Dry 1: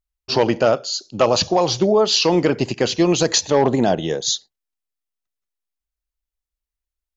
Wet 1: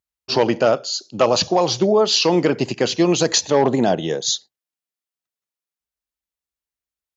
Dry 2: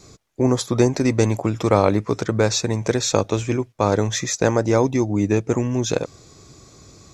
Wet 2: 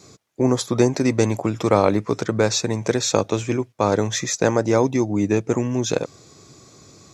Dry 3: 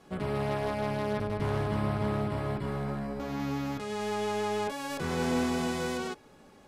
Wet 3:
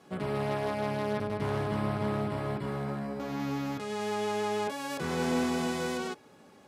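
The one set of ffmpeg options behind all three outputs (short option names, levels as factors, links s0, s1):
-af "highpass=110"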